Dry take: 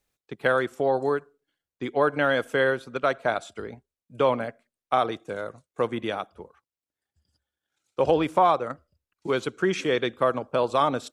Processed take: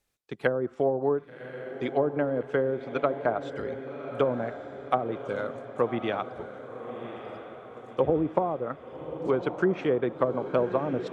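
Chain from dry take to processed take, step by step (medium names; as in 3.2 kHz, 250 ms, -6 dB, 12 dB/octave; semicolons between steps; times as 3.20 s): low-pass that closes with the level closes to 430 Hz, closed at -18 dBFS; echo that smears into a reverb 1128 ms, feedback 54%, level -10 dB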